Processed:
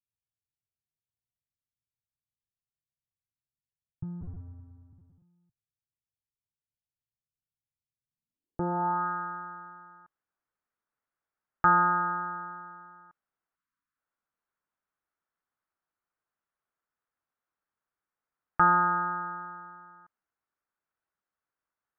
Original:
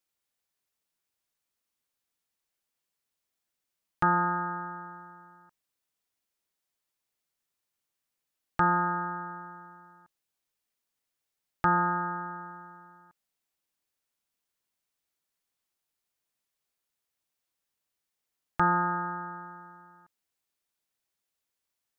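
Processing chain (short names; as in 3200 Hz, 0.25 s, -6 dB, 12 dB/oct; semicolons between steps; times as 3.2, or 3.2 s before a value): 4.21–5.22 cycle switcher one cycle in 2, inverted; low-pass sweep 120 Hz -> 1400 Hz, 8.03–9.08; 13.56–13.97 spectral delete 320–930 Hz; gain -2.5 dB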